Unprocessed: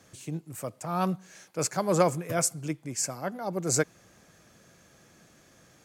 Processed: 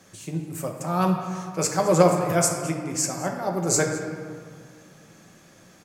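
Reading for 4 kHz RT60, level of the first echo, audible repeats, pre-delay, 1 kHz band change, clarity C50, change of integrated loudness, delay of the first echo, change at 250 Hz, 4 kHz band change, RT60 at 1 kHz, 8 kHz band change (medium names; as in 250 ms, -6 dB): 1.0 s, -16.5 dB, 1, 5 ms, +6.0 dB, 4.5 dB, +5.5 dB, 212 ms, +6.5 dB, +5.0 dB, 2.3 s, +5.0 dB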